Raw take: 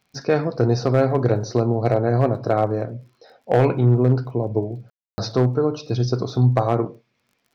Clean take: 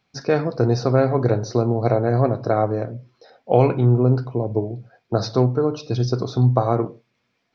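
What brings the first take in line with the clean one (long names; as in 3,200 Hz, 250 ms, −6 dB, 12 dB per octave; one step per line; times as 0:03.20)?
clipped peaks rebuilt −8 dBFS
click removal
ambience match 0:04.90–0:05.18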